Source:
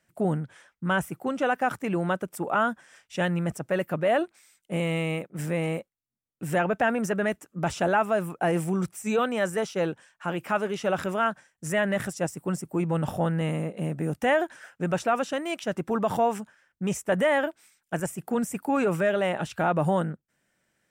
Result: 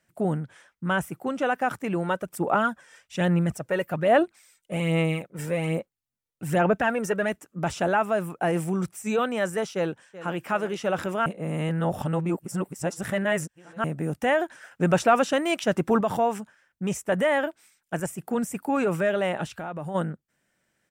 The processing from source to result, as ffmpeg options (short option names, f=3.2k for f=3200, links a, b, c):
-filter_complex "[0:a]asplit=3[a][b][c];[a]afade=t=out:st=2.02:d=0.02[d];[b]aphaser=in_gain=1:out_gain=1:delay=2.2:decay=0.46:speed=1.2:type=sinusoidal,afade=t=in:st=2.02:d=0.02,afade=t=out:st=7.29:d=0.02[e];[c]afade=t=in:st=7.29:d=0.02[f];[d][e][f]amix=inputs=3:normalize=0,asplit=2[g][h];[h]afade=t=in:st=9.75:d=0.01,afade=t=out:st=10.4:d=0.01,aecho=0:1:380|760|1140|1520|1900|2280|2660|3040:0.16788|0.117516|0.0822614|0.057583|0.0403081|0.0282157|0.019751|0.0138257[i];[g][i]amix=inputs=2:normalize=0,asettb=1/sr,asplit=3[j][k][l];[j]atrim=end=14.714[m];[k]atrim=start=14.71:end=16.01,asetpts=PTS-STARTPTS,afade=t=in:d=0.004:c=qsin,afade=t=out:st=1.296:d=0.004:c=qsin,acontrast=43[n];[l]atrim=start=16.006[o];[m][n]acrossfade=d=0.004:c1=hsin:c2=qsin[p];[p][o]acrossfade=d=0.004:c1=qsin:c2=hsin,asplit=3[q][r][s];[q]afade=t=out:st=19.49:d=0.02[t];[r]acompressor=threshold=-38dB:ratio=2:attack=3.2:release=140:knee=1:detection=peak,afade=t=in:st=19.49:d=0.02,afade=t=out:st=19.94:d=0.02[u];[s]afade=t=in:st=19.94:d=0.02[v];[t][u][v]amix=inputs=3:normalize=0,asplit=3[w][x][y];[w]atrim=end=11.262[z];[x]atrim=start=11.258:end=13.842,asetpts=PTS-STARTPTS,areverse[aa];[y]atrim=start=13.838[ab];[z][aa]acrossfade=d=0.004:c1=hsin:c2=hsin[ac];[ac][ab]acrossfade=d=0.004:c1=hsin:c2=hsin"